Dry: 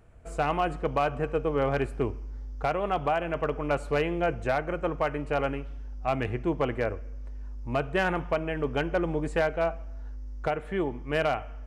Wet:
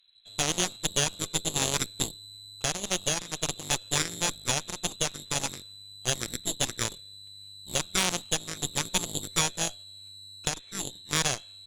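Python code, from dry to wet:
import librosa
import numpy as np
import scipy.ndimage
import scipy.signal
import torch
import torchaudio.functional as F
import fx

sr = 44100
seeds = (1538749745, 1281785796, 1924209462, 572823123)

y = fx.freq_invert(x, sr, carrier_hz=4000)
y = fx.cheby_harmonics(y, sr, harmonics=(3, 4, 6, 7), levels_db=(-9, -8, -17, -34), full_scale_db=-13.0)
y = y * librosa.db_to_amplitude(3.0)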